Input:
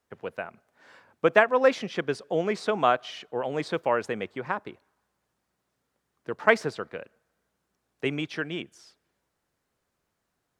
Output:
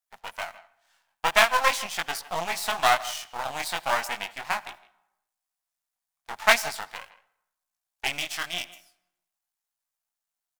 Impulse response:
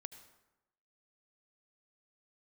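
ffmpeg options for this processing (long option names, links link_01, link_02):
-filter_complex "[0:a]flanger=delay=17:depth=5.7:speed=0.41,aeval=exprs='max(val(0),0)':channel_layout=same,agate=range=-16dB:threshold=-51dB:ratio=16:detection=peak,lowshelf=frequency=570:width_type=q:width=3:gain=-7.5,asplit=2[link_01][link_02];[link_02]adelay=160,highpass=300,lowpass=3400,asoftclip=type=hard:threshold=-19.5dB,volume=-17dB[link_03];[link_01][link_03]amix=inputs=2:normalize=0,asplit=2[link_04][link_05];[1:a]atrim=start_sample=2205[link_06];[link_05][link_06]afir=irnorm=-1:irlink=0,volume=-5dB[link_07];[link_04][link_07]amix=inputs=2:normalize=0,crystalizer=i=6:c=0"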